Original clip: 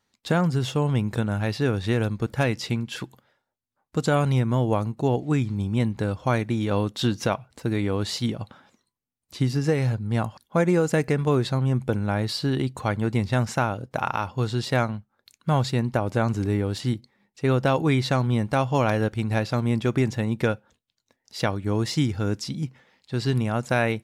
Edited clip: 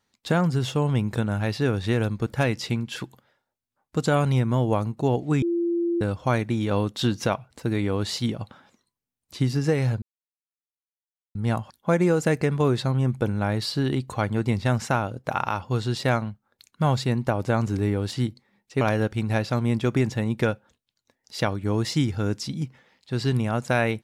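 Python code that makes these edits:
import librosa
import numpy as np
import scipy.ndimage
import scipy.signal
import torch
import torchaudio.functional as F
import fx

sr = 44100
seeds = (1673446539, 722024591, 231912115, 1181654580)

y = fx.edit(x, sr, fx.bleep(start_s=5.42, length_s=0.59, hz=342.0, db=-21.0),
    fx.insert_silence(at_s=10.02, length_s=1.33),
    fx.cut(start_s=17.48, length_s=1.34), tone=tone)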